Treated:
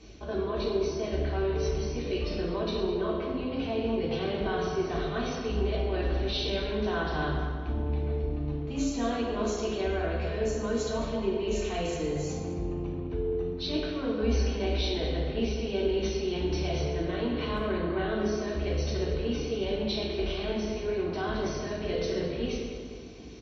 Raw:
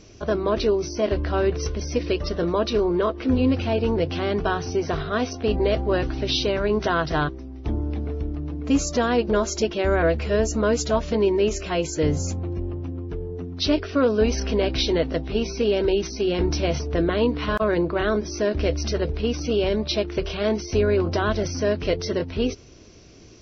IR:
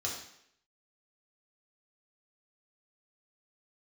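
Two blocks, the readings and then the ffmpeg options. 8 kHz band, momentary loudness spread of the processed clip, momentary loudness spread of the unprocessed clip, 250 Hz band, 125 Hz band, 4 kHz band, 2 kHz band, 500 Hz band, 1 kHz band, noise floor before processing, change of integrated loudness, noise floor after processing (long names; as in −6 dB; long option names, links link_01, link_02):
can't be measured, 3 LU, 7 LU, −7.0 dB, −5.5 dB, −6.5 dB, −8.0 dB, −7.5 dB, −7.5 dB, −37 dBFS, −7.0 dB, −36 dBFS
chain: -filter_complex "[0:a]areverse,acompressor=threshold=-28dB:ratio=6,areverse,asplit=2[link_01][link_02];[link_02]adelay=206,lowpass=frequency=2300:poles=1,volume=-8dB,asplit=2[link_03][link_04];[link_04]adelay=206,lowpass=frequency=2300:poles=1,volume=0.52,asplit=2[link_05][link_06];[link_06]adelay=206,lowpass=frequency=2300:poles=1,volume=0.52,asplit=2[link_07][link_08];[link_08]adelay=206,lowpass=frequency=2300:poles=1,volume=0.52,asplit=2[link_09][link_10];[link_10]adelay=206,lowpass=frequency=2300:poles=1,volume=0.52,asplit=2[link_11][link_12];[link_12]adelay=206,lowpass=frequency=2300:poles=1,volume=0.52[link_13];[link_01][link_03][link_05][link_07][link_09][link_11][link_13]amix=inputs=7:normalize=0[link_14];[1:a]atrim=start_sample=2205,asetrate=26460,aresample=44100[link_15];[link_14][link_15]afir=irnorm=-1:irlink=0,volume=-8dB"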